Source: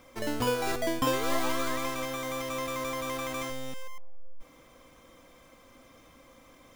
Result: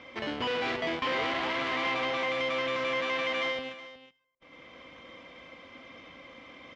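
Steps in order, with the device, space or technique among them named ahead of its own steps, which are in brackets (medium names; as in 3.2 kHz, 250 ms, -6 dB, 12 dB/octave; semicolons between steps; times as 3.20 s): 0.88–2.29 s: peaking EQ 840 Hz +9.5 dB 0.67 oct; 3.00–3.59 s: high-pass 270 Hz 12 dB/octave; analogue delay pedal into a guitar amplifier (bucket-brigade echo 105 ms, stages 1024, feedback 47%, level -14.5 dB; valve stage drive 36 dB, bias 0.45; cabinet simulation 89–4600 Hz, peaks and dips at 120 Hz -6 dB, 2.1 kHz +8 dB, 3 kHz +7 dB); delay 369 ms -14.5 dB; trim +6.5 dB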